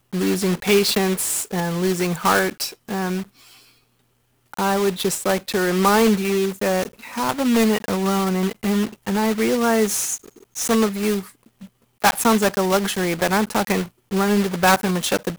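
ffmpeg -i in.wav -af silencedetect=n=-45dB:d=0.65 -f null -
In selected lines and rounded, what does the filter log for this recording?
silence_start: 3.70
silence_end: 4.53 | silence_duration: 0.83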